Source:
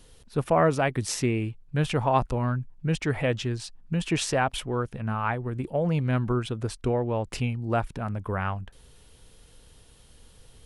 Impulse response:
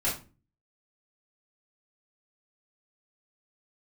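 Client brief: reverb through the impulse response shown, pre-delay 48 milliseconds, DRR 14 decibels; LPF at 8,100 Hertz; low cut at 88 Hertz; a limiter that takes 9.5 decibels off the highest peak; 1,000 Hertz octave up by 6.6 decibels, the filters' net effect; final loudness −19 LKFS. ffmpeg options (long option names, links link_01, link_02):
-filter_complex "[0:a]highpass=88,lowpass=8100,equalizer=frequency=1000:width_type=o:gain=8.5,alimiter=limit=-13dB:level=0:latency=1,asplit=2[link_01][link_02];[1:a]atrim=start_sample=2205,adelay=48[link_03];[link_02][link_03]afir=irnorm=-1:irlink=0,volume=-22.5dB[link_04];[link_01][link_04]amix=inputs=2:normalize=0,volume=8dB"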